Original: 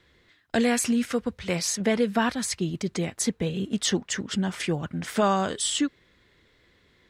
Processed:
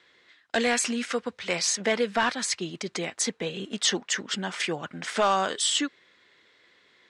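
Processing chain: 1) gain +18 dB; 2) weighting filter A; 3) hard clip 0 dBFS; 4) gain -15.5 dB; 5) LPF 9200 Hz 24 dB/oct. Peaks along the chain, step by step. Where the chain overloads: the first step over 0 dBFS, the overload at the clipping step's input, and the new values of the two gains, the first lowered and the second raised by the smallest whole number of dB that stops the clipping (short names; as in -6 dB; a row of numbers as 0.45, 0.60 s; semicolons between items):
+5.5, +7.0, 0.0, -15.5, -14.0 dBFS; step 1, 7.0 dB; step 1 +11 dB, step 4 -8.5 dB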